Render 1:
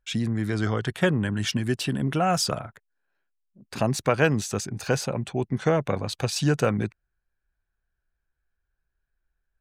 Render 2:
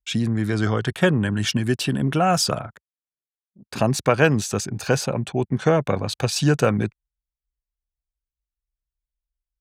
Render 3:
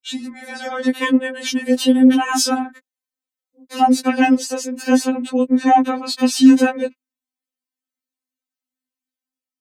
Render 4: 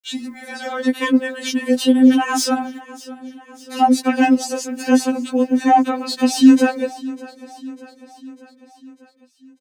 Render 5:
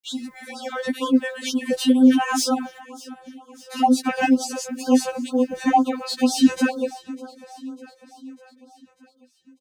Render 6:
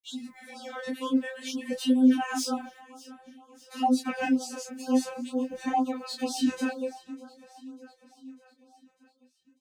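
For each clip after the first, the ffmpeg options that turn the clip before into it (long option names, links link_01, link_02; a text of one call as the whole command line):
ffmpeg -i in.wav -af "highpass=48,bandreject=frequency=2000:width=18,anlmdn=0.00631,volume=4dB" out.wav
ffmpeg -i in.wav -af "afreqshift=120,dynaudnorm=framelen=200:gausssize=5:maxgain=5dB,afftfilt=real='re*3.46*eq(mod(b,12),0)':imag='im*3.46*eq(mod(b,12),0)':win_size=2048:overlap=0.75,volume=2dB" out.wav
ffmpeg -i in.wav -filter_complex "[0:a]acrossover=split=130|1100[link_01][link_02][link_03];[link_03]asoftclip=type=tanh:threshold=-16.5dB[link_04];[link_01][link_02][link_04]amix=inputs=3:normalize=0,acrusher=bits=9:mix=0:aa=0.000001,aecho=1:1:598|1196|1794|2392|2990:0.112|0.0651|0.0377|0.0219|0.0127" out.wav
ffmpeg -i in.wav -af "afftfilt=real='re*(1-between(b*sr/1024,230*pow(2200/230,0.5+0.5*sin(2*PI*2.1*pts/sr))/1.41,230*pow(2200/230,0.5+0.5*sin(2*PI*2.1*pts/sr))*1.41))':imag='im*(1-between(b*sr/1024,230*pow(2200/230,0.5+0.5*sin(2*PI*2.1*pts/sr))/1.41,230*pow(2200/230,0.5+0.5*sin(2*PI*2.1*pts/sr))*1.41))':win_size=1024:overlap=0.75,volume=-2.5dB" out.wav
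ffmpeg -i in.wav -af "flanger=delay=19.5:depth=7.5:speed=0.51,volume=-5.5dB" out.wav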